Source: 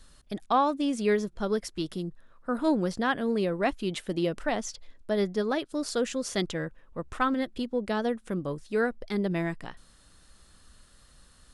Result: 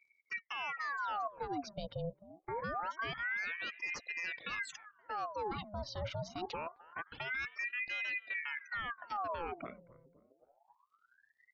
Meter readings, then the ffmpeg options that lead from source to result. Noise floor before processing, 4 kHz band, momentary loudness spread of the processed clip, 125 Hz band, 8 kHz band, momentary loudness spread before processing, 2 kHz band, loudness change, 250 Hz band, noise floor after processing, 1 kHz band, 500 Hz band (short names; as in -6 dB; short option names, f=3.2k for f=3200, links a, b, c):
-59 dBFS, -8.0 dB, 8 LU, -11.5 dB, -15.0 dB, 12 LU, -1.0 dB, -10.0 dB, -21.5 dB, -77 dBFS, -7.5 dB, -16.0 dB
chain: -filter_complex "[0:a]lowpass=f=5k:w=0.5412,lowpass=f=5k:w=1.3066,afftfilt=real='re*gte(hypot(re,im),0.00891)':imag='im*gte(hypot(re,im),0.00891)':win_size=1024:overlap=0.75,highpass=96,equalizer=f=220:w=4.7:g=11.5,aecho=1:1:1.2:0.7,areverse,acompressor=threshold=-28dB:ratio=16,areverse,alimiter=level_in=6dB:limit=-24dB:level=0:latency=1:release=88,volume=-6dB,acrossover=split=2200[a][b];[a]asplit=2[c][d];[d]adelay=262,lowpass=f=890:p=1,volume=-17dB,asplit=2[e][f];[f]adelay=262,lowpass=f=890:p=1,volume=0.45,asplit=2[g][h];[h]adelay=262,lowpass=f=890:p=1,volume=0.45,asplit=2[i][j];[j]adelay=262,lowpass=f=890:p=1,volume=0.45[k];[c][e][g][i][k]amix=inputs=5:normalize=0[l];[b]acompressor=mode=upward:threshold=-55dB:ratio=2.5[m];[l][m]amix=inputs=2:normalize=0,aeval=exprs='val(0)*sin(2*PI*1300*n/s+1300*0.75/0.25*sin(2*PI*0.25*n/s))':c=same"